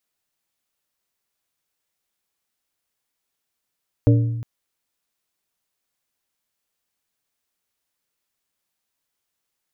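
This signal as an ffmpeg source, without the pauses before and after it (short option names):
-f lavfi -i "aevalsrc='0.316*pow(10,-3*t/1.21)*sin(2*PI*116*t)+0.178*pow(10,-3*t/0.637)*sin(2*PI*290*t)+0.1*pow(10,-3*t/0.459)*sin(2*PI*464*t)+0.0562*pow(10,-3*t/0.392)*sin(2*PI*580*t)':d=0.36:s=44100"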